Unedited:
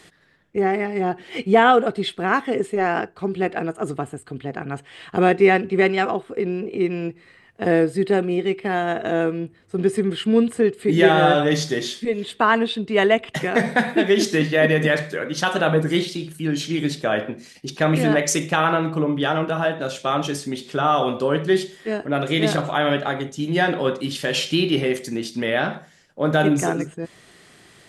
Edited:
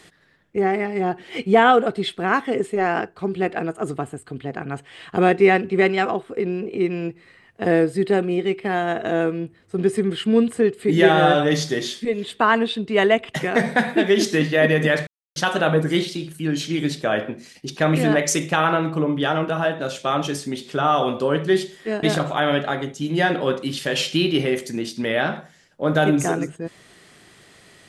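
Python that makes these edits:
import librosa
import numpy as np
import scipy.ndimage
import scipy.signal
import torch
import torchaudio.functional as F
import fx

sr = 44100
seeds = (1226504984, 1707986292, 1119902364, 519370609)

y = fx.edit(x, sr, fx.silence(start_s=15.07, length_s=0.29),
    fx.cut(start_s=22.03, length_s=0.38), tone=tone)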